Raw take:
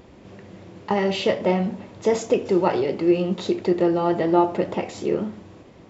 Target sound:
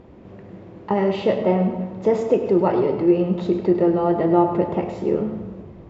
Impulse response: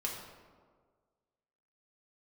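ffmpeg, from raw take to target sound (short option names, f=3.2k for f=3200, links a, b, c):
-filter_complex "[0:a]lowpass=f=1k:p=1,asplit=2[a][b];[b]asubboost=boost=10:cutoff=98[c];[1:a]atrim=start_sample=2205,adelay=101[d];[c][d]afir=irnorm=-1:irlink=0,volume=-9.5dB[e];[a][e]amix=inputs=2:normalize=0,volume=2.5dB"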